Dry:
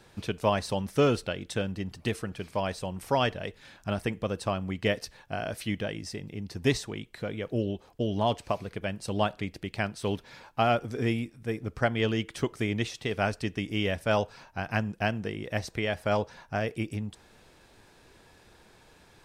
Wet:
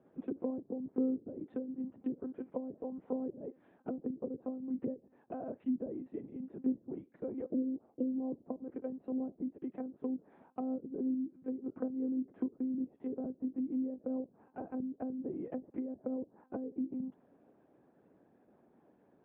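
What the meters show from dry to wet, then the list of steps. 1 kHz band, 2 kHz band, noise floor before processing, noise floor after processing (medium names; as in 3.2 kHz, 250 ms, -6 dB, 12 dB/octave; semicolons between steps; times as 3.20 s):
-20.0 dB, under -30 dB, -58 dBFS, -69 dBFS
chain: monotone LPC vocoder at 8 kHz 260 Hz; low-pass that closes with the level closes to 320 Hz, closed at -26 dBFS; ladder band-pass 340 Hz, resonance 30%; trim +8 dB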